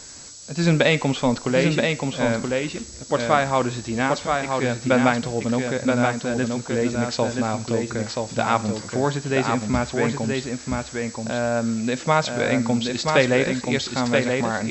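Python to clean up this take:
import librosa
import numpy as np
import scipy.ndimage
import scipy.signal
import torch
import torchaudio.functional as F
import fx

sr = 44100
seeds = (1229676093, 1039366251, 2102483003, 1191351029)

y = fx.notch(x, sr, hz=7800.0, q=30.0)
y = fx.noise_reduce(y, sr, print_start_s=0.0, print_end_s=0.5, reduce_db=30.0)
y = fx.fix_echo_inverse(y, sr, delay_ms=978, level_db=-4.0)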